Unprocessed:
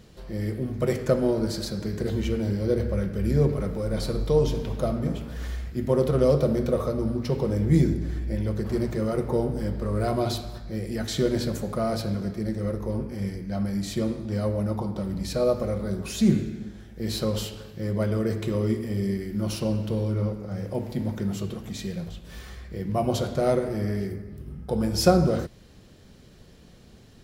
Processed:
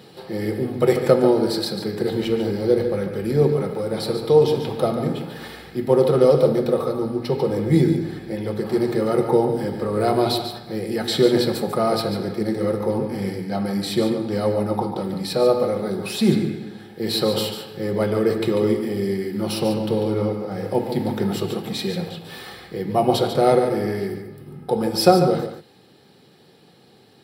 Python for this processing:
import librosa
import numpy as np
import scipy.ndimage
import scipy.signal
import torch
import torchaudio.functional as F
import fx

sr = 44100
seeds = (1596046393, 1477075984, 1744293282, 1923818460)

p1 = fx.graphic_eq_31(x, sr, hz=(800, 4000, 6300), db=(6, 5, -9))
p2 = p1 + fx.echo_single(p1, sr, ms=144, db=-9.0, dry=0)
p3 = fx.rider(p2, sr, range_db=4, speed_s=2.0)
p4 = scipy.signal.sosfilt(scipy.signal.butter(4, 140.0, 'highpass', fs=sr, output='sos'), p3)
p5 = fx.notch(p4, sr, hz=6800.0, q=6.9)
p6 = p5 + 0.38 * np.pad(p5, (int(2.4 * sr / 1000.0), 0))[:len(p5)]
y = p6 * librosa.db_to_amplitude(5.0)